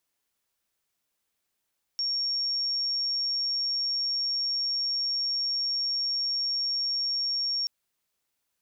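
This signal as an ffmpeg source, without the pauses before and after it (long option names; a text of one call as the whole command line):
ffmpeg -f lavfi -i "sine=frequency=5530:duration=5.68:sample_rate=44100,volume=-7.44dB" out.wav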